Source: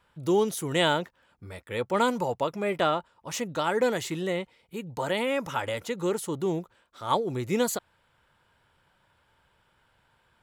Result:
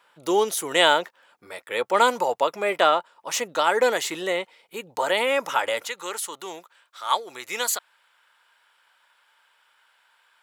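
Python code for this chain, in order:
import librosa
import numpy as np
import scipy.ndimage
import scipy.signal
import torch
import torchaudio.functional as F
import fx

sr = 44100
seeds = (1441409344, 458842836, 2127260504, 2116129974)

y = fx.highpass(x, sr, hz=fx.steps((0.0, 510.0), (5.85, 1100.0)), slope=12)
y = F.gain(torch.from_numpy(y), 7.5).numpy()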